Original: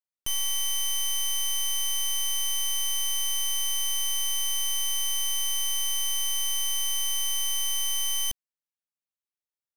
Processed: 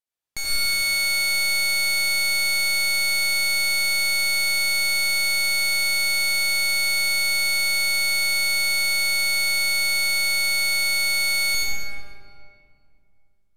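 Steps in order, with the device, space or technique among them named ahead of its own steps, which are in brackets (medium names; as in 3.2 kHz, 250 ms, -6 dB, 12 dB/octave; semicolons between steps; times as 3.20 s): slowed and reverbed (tape speed -28%; reverberation RT60 2.5 s, pre-delay 72 ms, DRR -6 dB)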